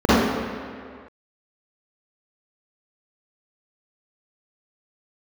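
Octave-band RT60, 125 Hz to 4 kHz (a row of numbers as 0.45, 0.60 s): 1.7, 1.9, 2.0, 2.1, 2.1, 1.6 s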